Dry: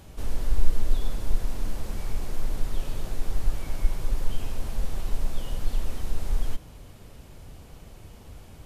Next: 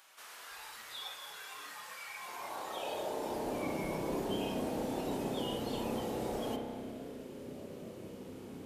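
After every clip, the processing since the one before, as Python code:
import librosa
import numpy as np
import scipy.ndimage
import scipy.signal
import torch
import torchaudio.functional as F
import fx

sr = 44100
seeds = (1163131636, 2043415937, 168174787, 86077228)

y = fx.filter_sweep_highpass(x, sr, from_hz=1300.0, to_hz=260.0, start_s=2.15, end_s=3.65, q=1.3)
y = fx.rev_spring(y, sr, rt60_s=3.0, pass_ms=(31,), chirp_ms=30, drr_db=1.5)
y = fx.noise_reduce_blind(y, sr, reduce_db=9)
y = y * 10.0 ** (4.5 / 20.0)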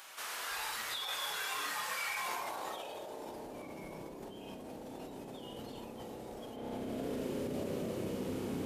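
y = fx.over_compress(x, sr, threshold_db=-46.0, ratio=-1.0)
y = y * 10.0 ** (4.0 / 20.0)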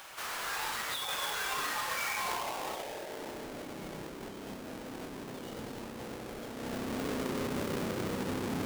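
y = fx.halfwave_hold(x, sr)
y = y * 10.0 ** (-1.0 / 20.0)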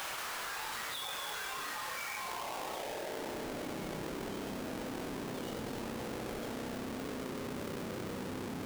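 y = fx.env_flatten(x, sr, amount_pct=100)
y = y * 10.0 ** (-7.0 / 20.0)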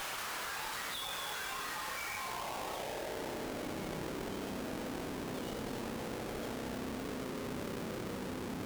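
y = fx.tube_stage(x, sr, drive_db=36.0, bias=0.65)
y = y * 10.0 ** (3.5 / 20.0)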